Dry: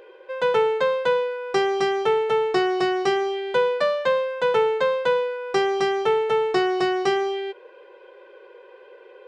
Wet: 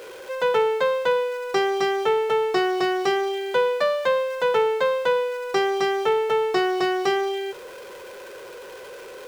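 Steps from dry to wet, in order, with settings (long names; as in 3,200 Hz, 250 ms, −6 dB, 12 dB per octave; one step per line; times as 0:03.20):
converter with a step at zero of −36.5 dBFS
low-shelf EQ 210 Hz −6 dB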